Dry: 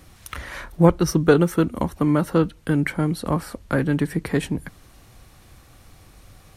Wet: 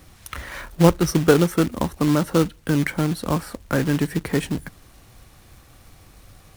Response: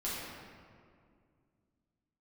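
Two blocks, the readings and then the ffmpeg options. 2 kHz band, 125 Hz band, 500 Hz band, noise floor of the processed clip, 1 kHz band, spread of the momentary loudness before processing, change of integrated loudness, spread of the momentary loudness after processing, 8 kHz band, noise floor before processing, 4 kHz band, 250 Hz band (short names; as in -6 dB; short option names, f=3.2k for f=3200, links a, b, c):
+0.5 dB, 0.0 dB, 0.0 dB, -51 dBFS, +0.5 dB, 15 LU, +0.5 dB, 15 LU, +3.5 dB, -51 dBFS, +4.5 dB, 0.0 dB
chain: -af "acrusher=bits=3:mode=log:mix=0:aa=0.000001"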